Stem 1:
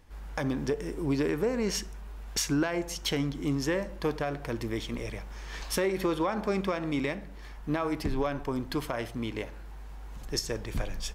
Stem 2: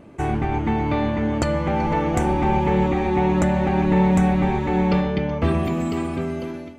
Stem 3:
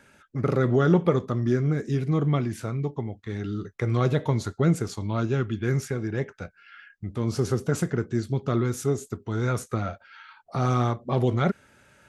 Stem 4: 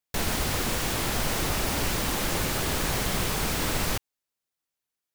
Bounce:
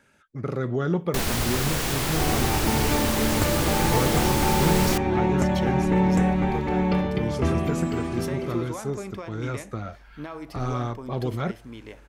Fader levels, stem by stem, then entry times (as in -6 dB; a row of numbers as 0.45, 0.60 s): -7.0, -3.5, -5.0, +1.5 dB; 2.50, 2.00, 0.00, 1.00 s